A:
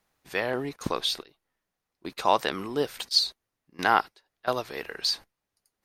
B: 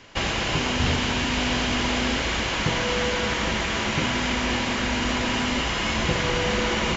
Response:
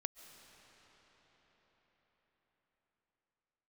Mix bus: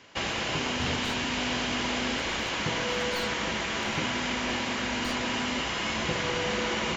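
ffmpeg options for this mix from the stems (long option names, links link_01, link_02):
-filter_complex "[0:a]equalizer=frequency=4000:width_type=o:width=0.21:gain=9,aeval=exprs='(tanh(14.1*val(0)+0.65)-tanh(0.65))/14.1':channel_layout=same,volume=-15dB[link_01];[1:a]highpass=frequency=150:poles=1,volume=-4.5dB[link_02];[link_01][link_02]amix=inputs=2:normalize=0"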